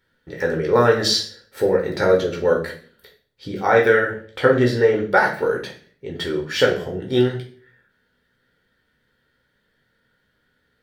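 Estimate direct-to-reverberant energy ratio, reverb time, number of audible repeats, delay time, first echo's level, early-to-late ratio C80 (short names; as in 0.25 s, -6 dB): -0.5 dB, 0.45 s, none, none, none, 13.5 dB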